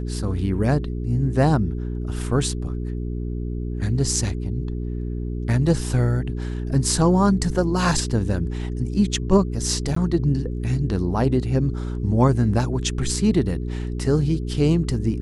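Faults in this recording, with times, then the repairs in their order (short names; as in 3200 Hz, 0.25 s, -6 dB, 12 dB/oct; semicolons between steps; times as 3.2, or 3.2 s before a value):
hum 60 Hz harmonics 7 -27 dBFS
9.95–9.96 gap 14 ms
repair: de-hum 60 Hz, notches 7; interpolate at 9.95, 14 ms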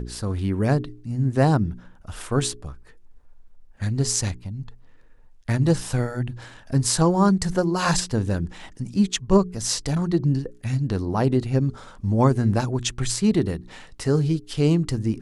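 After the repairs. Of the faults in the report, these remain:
none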